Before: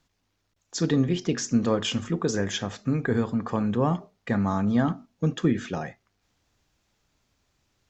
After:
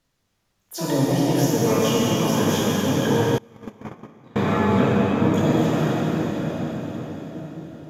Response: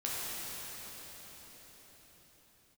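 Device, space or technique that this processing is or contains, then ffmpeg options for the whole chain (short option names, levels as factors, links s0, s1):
shimmer-style reverb: -filter_complex "[0:a]asplit=2[s0][s1];[s1]asetrate=88200,aresample=44100,atempo=0.5,volume=0.631[s2];[s0][s2]amix=inputs=2:normalize=0[s3];[1:a]atrim=start_sample=2205[s4];[s3][s4]afir=irnorm=-1:irlink=0,asettb=1/sr,asplit=3[s5][s6][s7];[s5]atrim=end=3.384[s8];[s6]atrim=start=3.38:end=4.36,asetpts=PTS-STARTPTS,afade=t=in:d=0.004:c=qsin,afade=t=out:st=0.976:d=0.004:c=qsin,agate=range=0.0398:threshold=0.224:ratio=16:detection=peak[s9];[s7]atrim=start=4.356[s10];[s8][s9]acrossfade=d=0.004:c1=hsin:c2=qsin[s11];[s11][s10]acrossfade=d=0.004:c1=qsin:c2=hsin,volume=0.841"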